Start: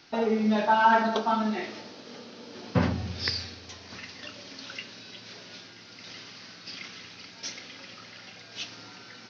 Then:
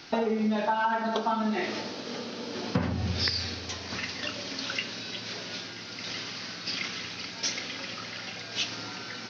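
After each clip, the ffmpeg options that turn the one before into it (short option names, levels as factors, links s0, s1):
-af "acompressor=threshold=0.0251:ratio=10,volume=2.51"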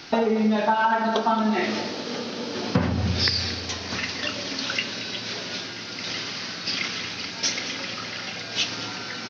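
-af "aecho=1:1:226:0.2,volume=1.88"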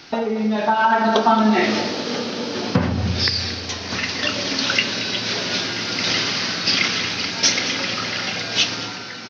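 -af "dynaudnorm=f=140:g=11:m=4.47,volume=0.891"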